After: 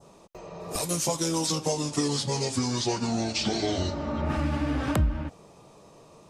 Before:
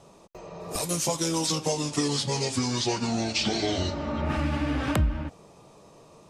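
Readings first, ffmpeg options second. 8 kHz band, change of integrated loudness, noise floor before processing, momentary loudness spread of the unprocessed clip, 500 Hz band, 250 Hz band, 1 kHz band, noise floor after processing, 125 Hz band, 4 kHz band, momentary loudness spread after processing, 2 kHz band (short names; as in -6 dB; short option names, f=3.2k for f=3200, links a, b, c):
-0.5 dB, -0.5 dB, -53 dBFS, 9 LU, 0.0 dB, 0.0 dB, -0.5 dB, -53 dBFS, 0.0 dB, -2.0 dB, 8 LU, -3.0 dB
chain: -af "adynamicequalizer=threshold=0.00562:dfrequency=2600:dqfactor=1:tfrequency=2600:tqfactor=1:attack=5:release=100:ratio=0.375:range=2:mode=cutabove:tftype=bell"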